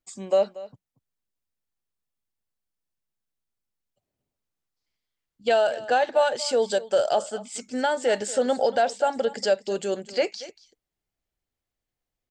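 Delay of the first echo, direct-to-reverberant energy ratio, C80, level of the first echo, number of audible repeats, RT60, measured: 234 ms, no reverb audible, no reverb audible, −17.5 dB, 1, no reverb audible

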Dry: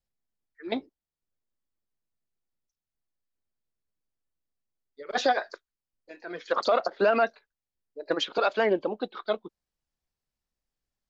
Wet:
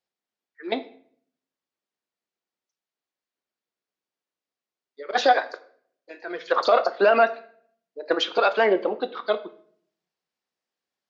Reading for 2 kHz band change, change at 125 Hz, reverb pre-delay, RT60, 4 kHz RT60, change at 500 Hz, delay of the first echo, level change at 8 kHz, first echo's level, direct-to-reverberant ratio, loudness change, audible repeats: +5.5 dB, can't be measured, 3 ms, 0.60 s, 0.45 s, +5.0 dB, no echo audible, can't be measured, no echo audible, 10.0 dB, +5.0 dB, no echo audible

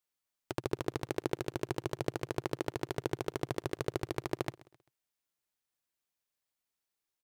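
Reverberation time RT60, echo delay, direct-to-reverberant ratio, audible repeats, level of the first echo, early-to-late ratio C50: no reverb audible, 131 ms, no reverb audible, 2, −21.0 dB, no reverb audible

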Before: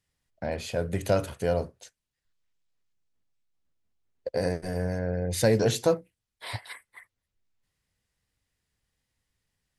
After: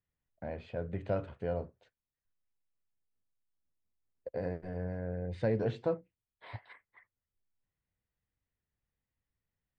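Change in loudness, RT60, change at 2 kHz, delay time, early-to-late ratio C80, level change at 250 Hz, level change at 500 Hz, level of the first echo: −8.5 dB, no reverb audible, −11.5 dB, no echo audible, no reverb audible, −8.0 dB, −9.0 dB, no echo audible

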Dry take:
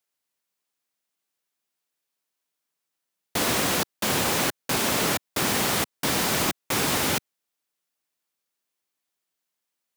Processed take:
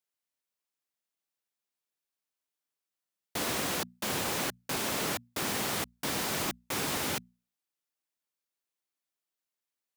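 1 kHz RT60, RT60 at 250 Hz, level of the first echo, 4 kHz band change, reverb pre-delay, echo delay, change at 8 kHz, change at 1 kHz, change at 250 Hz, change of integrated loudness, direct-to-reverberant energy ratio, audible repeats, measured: no reverb audible, no reverb audible, no echo audible, −8.0 dB, no reverb audible, no echo audible, −8.0 dB, −8.0 dB, −8.5 dB, −8.0 dB, no reverb audible, no echo audible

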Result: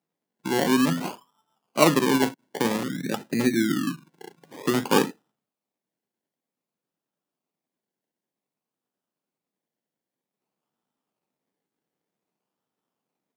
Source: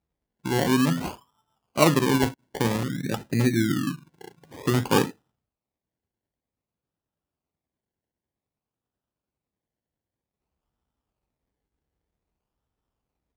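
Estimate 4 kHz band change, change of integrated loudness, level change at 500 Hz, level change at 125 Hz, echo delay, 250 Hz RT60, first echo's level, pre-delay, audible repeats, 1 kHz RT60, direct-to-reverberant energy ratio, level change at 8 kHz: +1.0 dB, 0.0 dB, +1.0 dB, −6.5 dB, no echo audible, no reverb audible, no echo audible, no reverb audible, no echo audible, no reverb audible, no reverb audible, +1.0 dB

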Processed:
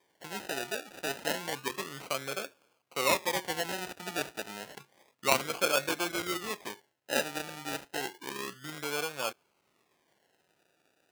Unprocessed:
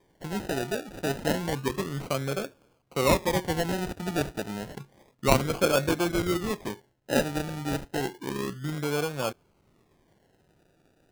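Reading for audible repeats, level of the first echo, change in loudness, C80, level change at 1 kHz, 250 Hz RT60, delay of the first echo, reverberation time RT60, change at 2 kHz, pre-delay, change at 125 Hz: no echo audible, no echo audible, −4.5 dB, no reverb audible, −3.0 dB, no reverb audible, no echo audible, no reverb audible, −0.5 dB, no reverb audible, −17.0 dB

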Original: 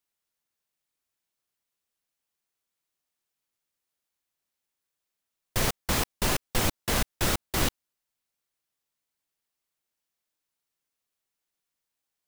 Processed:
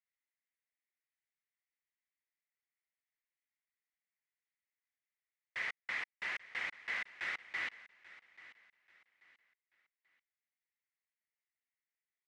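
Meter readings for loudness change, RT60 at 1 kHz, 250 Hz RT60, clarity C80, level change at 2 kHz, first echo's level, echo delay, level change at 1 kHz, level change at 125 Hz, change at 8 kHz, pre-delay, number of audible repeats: −11.5 dB, no reverb audible, no reverb audible, no reverb audible, −3.0 dB, −18.0 dB, 836 ms, −16.5 dB, below −35 dB, −31.0 dB, no reverb audible, 2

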